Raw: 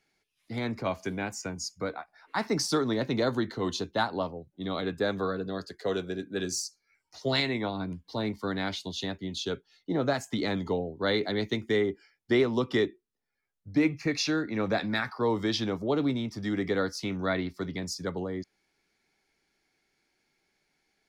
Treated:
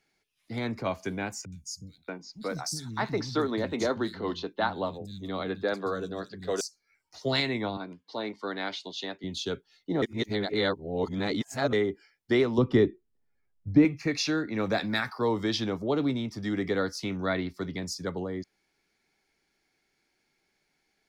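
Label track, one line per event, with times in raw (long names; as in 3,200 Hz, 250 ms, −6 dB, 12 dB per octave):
1.450000	6.610000	three-band delay without the direct sound lows, highs, mids 70/630 ms, splits 190/4,400 Hz
7.770000	9.240000	band-pass filter 320–5,400 Hz
10.020000	11.730000	reverse
12.580000	13.850000	spectral tilt −3 dB per octave
14.580000	15.290000	high-shelf EQ 6,000 Hz +8.5 dB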